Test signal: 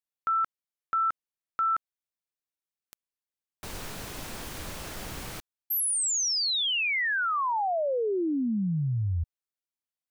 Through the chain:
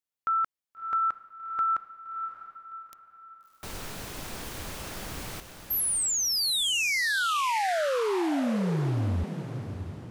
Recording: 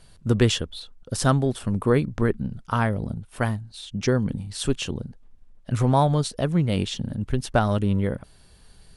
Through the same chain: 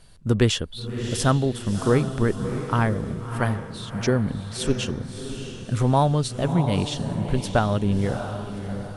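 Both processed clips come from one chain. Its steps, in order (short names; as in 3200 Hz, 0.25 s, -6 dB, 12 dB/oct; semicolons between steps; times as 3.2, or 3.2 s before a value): diffused feedback echo 0.649 s, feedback 42%, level -8.5 dB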